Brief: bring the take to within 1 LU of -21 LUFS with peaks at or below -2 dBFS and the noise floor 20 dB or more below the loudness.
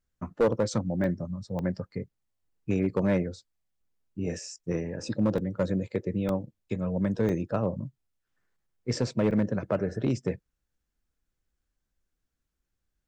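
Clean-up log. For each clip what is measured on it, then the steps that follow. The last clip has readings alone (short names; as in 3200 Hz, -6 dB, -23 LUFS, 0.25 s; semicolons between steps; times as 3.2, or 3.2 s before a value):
clipped 0.5%; flat tops at -17.5 dBFS; dropouts 6; longest dropout 1.7 ms; loudness -30.0 LUFS; peak -17.5 dBFS; loudness target -21.0 LUFS
-> clip repair -17.5 dBFS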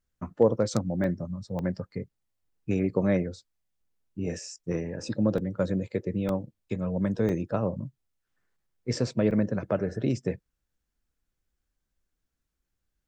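clipped 0.0%; dropouts 6; longest dropout 1.7 ms
-> interpolate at 1.04/1.59/5.38/6.29/7.29/9.31, 1.7 ms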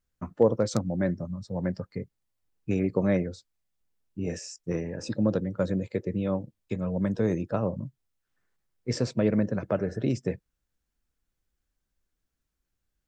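dropouts 0; loudness -29.0 LUFS; peak -8.5 dBFS; loudness target -21.0 LUFS
-> gain +8 dB; limiter -2 dBFS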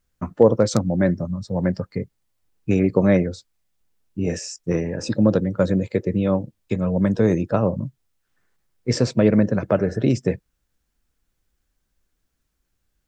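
loudness -21.5 LUFS; peak -2.0 dBFS; noise floor -74 dBFS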